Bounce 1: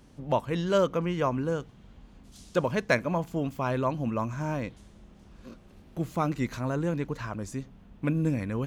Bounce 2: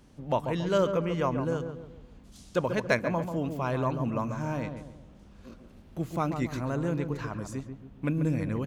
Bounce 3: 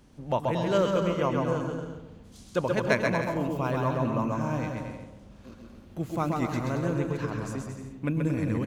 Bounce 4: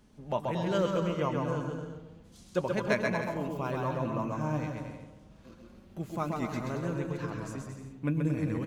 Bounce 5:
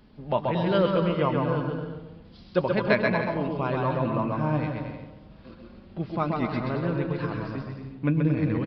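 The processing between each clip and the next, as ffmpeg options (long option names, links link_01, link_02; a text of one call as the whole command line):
ffmpeg -i in.wav -filter_complex "[0:a]asplit=2[link_01][link_02];[link_02]adelay=139,lowpass=frequency=1200:poles=1,volume=-6.5dB,asplit=2[link_03][link_04];[link_04]adelay=139,lowpass=frequency=1200:poles=1,volume=0.44,asplit=2[link_05][link_06];[link_06]adelay=139,lowpass=frequency=1200:poles=1,volume=0.44,asplit=2[link_07][link_08];[link_08]adelay=139,lowpass=frequency=1200:poles=1,volume=0.44,asplit=2[link_09][link_10];[link_10]adelay=139,lowpass=frequency=1200:poles=1,volume=0.44[link_11];[link_01][link_03][link_05][link_07][link_09][link_11]amix=inputs=6:normalize=0,volume=-1.5dB" out.wav
ffmpeg -i in.wav -af "aecho=1:1:130|227.5|300.6|355.5|396.6:0.631|0.398|0.251|0.158|0.1" out.wav
ffmpeg -i in.wav -af "flanger=delay=4.7:depth=2.1:regen=56:speed=0.31:shape=sinusoidal" out.wav
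ffmpeg -i in.wav -af "aresample=11025,aresample=44100,volume=6dB" out.wav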